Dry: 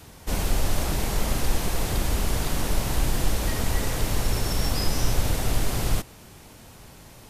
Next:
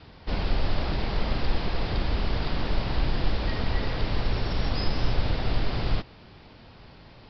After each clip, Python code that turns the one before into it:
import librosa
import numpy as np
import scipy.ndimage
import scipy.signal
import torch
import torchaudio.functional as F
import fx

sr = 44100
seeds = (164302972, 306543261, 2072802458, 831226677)

y = scipy.signal.sosfilt(scipy.signal.butter(16, 5100.0, 'lowpass', fs=sr, output='sos'), x)
y = F.gain(torch.from_numpy(y), -1.5).numpy()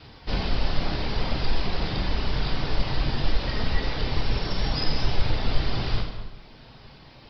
y = fx.dereverb_blind(x, sr, rt60_s=1.0)
y = fx.high_shelf(y, sr, hz=4000.0, db=8.5)
y = fx.rev_plate(y, sr, seeds[0], rt60_s=1.3, hf_ratio=0.8, predelay_ms=0, drr_db=0.5)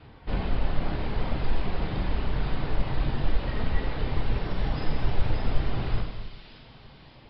y = fx.air_absorb(x, sr, metres=400.0)
y = fx.echo_wet_highpass(y, sr, ms=580, feedback_pct=51, hz=3300.0, wet_db=-3.5)
y = F.gain(torch.from_numpy(y), -1.0).numpy()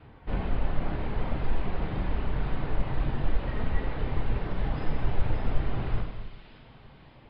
y = scipy.signal.sosfilt(scipy.signal.butter(2, 2700.0, 'lowpass', fs=sr, output='sos'), x)
y = F.gain(torch.from_numpy(y), -1.5).numpy()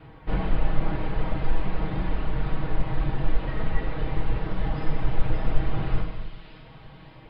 y = x + 0.49 * np.pad(x, (int(6.3 * sr / 1000.0), 0))[:len(x)]
y = fx.rider(y, sr, range_db=10, speed_s=2.0)
y = F.gain(torch.from_numpy(y), 1.5).numpy()